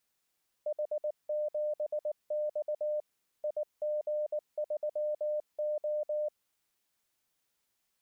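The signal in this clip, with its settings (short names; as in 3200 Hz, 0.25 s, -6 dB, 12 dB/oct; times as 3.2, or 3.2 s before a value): Morse "H7X IG3O" 19 wpm 602 Hz -29.5 dBFS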